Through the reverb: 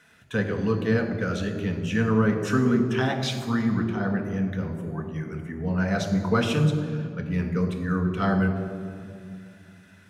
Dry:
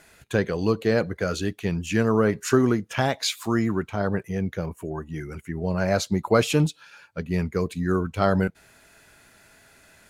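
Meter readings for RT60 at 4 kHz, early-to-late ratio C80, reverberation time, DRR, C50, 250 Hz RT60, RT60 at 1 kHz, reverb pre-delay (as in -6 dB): 1.5 s, 8.5 dB, 2.3 s, 3.0 dB, 7.5 dB, 3.4 s, 2.2 s, 3 ms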